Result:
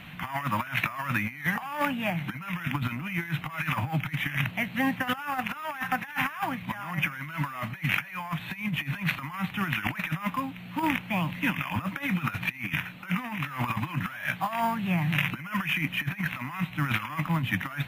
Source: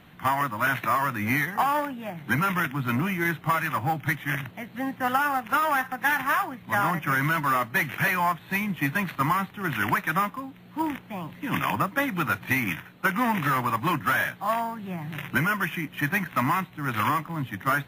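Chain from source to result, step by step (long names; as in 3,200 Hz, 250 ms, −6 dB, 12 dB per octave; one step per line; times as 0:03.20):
graphic EQ with 15 bands 160 Hz +4 dB, 400 Hz −10 dB, 2,500 Hz +9 dB
compressor whose output falls as the input rises −29 dBFS, ratio −0.5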